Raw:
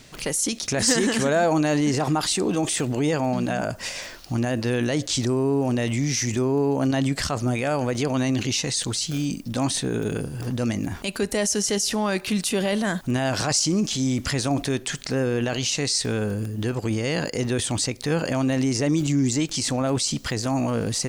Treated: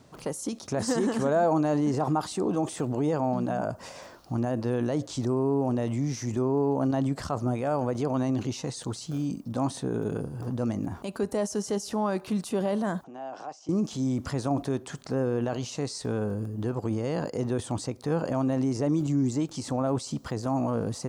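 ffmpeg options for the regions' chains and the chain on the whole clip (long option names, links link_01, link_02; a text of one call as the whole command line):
ffmpeg -i in.wav -filter_complex "[0:a]asettb=1/sr,asplit=3[link_01][link_02][link_03];[link_01]atrim=end=13.044[link_04];[link_02]atrim=start=13.04:end=13.69,asetpts=PTS-STARTPTS,afade=type=in:duration=0.004:curve=qsin,afade=type=out:start_time=0.646:duration=0.004:curve=qsin,acompressor=threshold=-31dB:ratio=16:attack=3.2:release=140:knee=1:detection=peak,highpass=frequency=210:width=0.5412,highpass=frequency=210:width=1.3066,equalizer=frequency=220:width_type=q:width=4:gain=-9,equalizer=frequency=760:width_type=q:width=4:gain=8,equalizer=frequency=2800:width_type=q:width=4:gain=4,equalizer=frequency=4300:width_type=q:width=4:gain=-8,lowpass=frequency=6400:width=0.5412,lowpass=frequency=6400:width=1.3066[link_05];[link_03]atrim=start=13.686[link_06];[link_04][link_05]acrossfade=duration=0.004:curve1=hsin:curve2=qsin[link_07];[link_07][link_06]acrossfade=duration=0.004:curve1=qsin:curve2=hsin,highpass=70,highshelf=frequency=1500:width_type=q:width=1.5:gain=-10,volume=-4dB" out.wav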